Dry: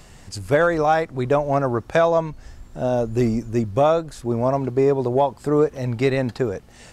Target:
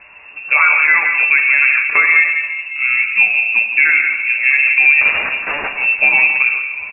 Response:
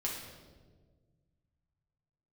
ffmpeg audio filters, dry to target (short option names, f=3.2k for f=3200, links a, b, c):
-filter_complex "[0:a]highpass=f=85:p=1,aecho=1:1:7.3:0.57,asettb=1/sr,asplit=3[a][b][c];[a]atrim=end=5.014[d];[b]atrim=start=5.01:end=5.68,asetpts=PTS-STARTPTS,afade=t=in:d=0.004:c=qsin,afade=t=out:st=0.666:d=0.004:c=qsin,aeval=exprs='(mod(11.2*val(0)+1,2)-1)/11.2':c=same[e];[c]atrim=start=5.676[f];[d][e]acrossfade=d=0.004:c1=hsin:c2=qsin[g];[g][f]acrossfade=d=0.004:c1=qsin:c2=hsin,aecho=1:1:168:0.316,asplit=2[h][i];[1:a]atrim=start_sample=2205[j];[i][j]afir=irnorm=-1:irlink=0,volume=-2dB[k];[h][k]amix=inputs=2:normalize=0,lowpass=f=2.4k:t=q:w=0.5098,lowpass=f=2.4k:t=q:w=0.6013,lowpass=f=2.4k:t=q:w=0.9,lowpass=f=2.4k:t=q:w=2.563,afreqshift=-2800,alimiter=level_in=2.5dB:limit=-1dB:release=50:level=0:latency=1,volume=-1dB"